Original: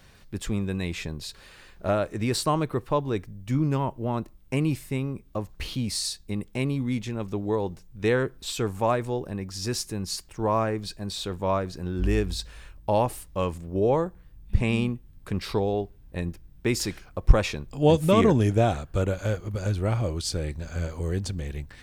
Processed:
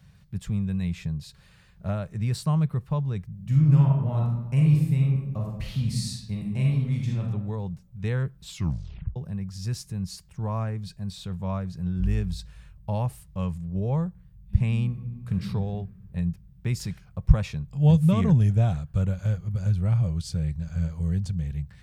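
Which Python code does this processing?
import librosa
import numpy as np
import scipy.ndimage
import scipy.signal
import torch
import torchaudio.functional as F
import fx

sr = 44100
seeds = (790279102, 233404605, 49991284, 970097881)

y = fx.reverb_throw(x, sr, start_s=3.29, length_s=3.92, rt60_s=0.96, drr_db=-2.0)
y = fx.reverb_throw(y, sr, start_s=14.86, length_s=0.55, rt60_s=1.8, drr_db=3.0)
y = fx.edit(y, sr, fx.tape_stop(start_s=8.48, length_s=0.68), tone=tone)
y = scipy.signal.sosfilt(scipy.signal.butter(2, 46.0, 'highpass', fs=sr, output='sos'), y)
y = fx.low_shelf_res(y, sr, hz=220.0, db=10.0, q=3.0)
y = y * librosa.db_to_amplitude(-9.0)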